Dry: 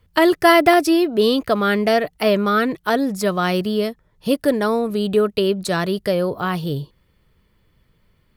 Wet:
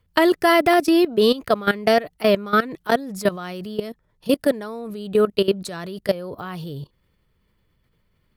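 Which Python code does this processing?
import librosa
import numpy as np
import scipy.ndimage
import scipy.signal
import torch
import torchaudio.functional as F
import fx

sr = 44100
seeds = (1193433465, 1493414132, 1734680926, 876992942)

y = fx.level_steps(x, sr, step_db=17)
y = y * librosa.db_to_amplitude(2.5)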